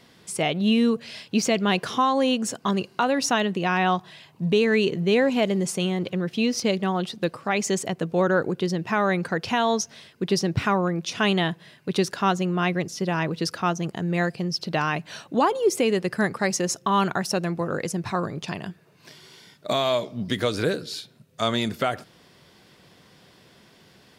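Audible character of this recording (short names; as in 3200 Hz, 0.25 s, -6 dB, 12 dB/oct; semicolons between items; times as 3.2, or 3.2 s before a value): noise floor -56 dBFS; spectral tilt -4.5 dB/oct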